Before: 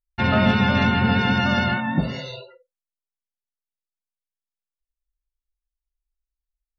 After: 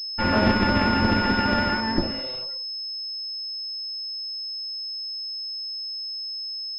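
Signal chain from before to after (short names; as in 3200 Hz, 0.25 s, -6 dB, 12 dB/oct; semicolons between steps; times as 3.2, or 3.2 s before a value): minimum comb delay 3.5 ms; pulse-width modulation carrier 5200 Hz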